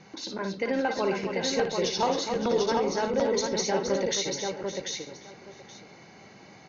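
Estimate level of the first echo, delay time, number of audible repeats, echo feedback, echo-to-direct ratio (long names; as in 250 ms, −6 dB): −6.5 dB, 56 ms, 9, repeats not evenly spaced, −0.5 dB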